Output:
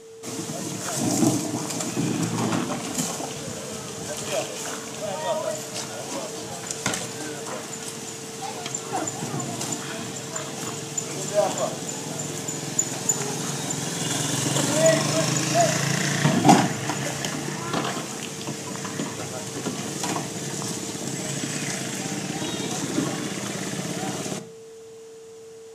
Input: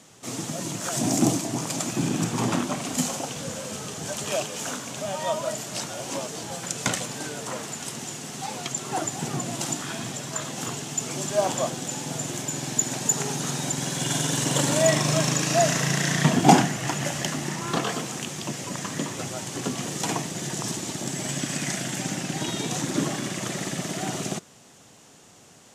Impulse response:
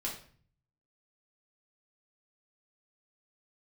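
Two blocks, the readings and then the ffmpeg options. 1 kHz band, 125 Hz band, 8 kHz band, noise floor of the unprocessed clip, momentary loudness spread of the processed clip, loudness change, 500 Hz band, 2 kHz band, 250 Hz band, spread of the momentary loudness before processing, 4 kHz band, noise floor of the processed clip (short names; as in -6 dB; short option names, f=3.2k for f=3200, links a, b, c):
+0.5 dB, -0.5 dB, 0.0 dB, -52 dBFS, 11 LU, +0.5 dB, +1.5 dB, +0.5 dB, +0.5 dB, 10 LU, +0.5 dB, -42 dBFS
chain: -filter_complex "[0:a]aeval=exprs='val(0)+0.00794*sin(2*PI*450*n/s)':c=same,asplit=2[a][b];[1:a]atrim=start_sample=2205[c];[b][c]afir=irnorm=-1:irlink=0,volume=-8.5dB[d];[a][d]amix=inputs=2:normalize=0,volume=-2dB"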